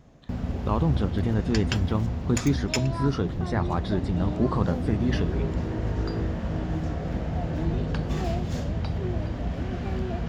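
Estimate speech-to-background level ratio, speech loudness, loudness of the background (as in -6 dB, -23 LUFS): 2.0 dB, -28.0 LUFS, -30.0 LUFS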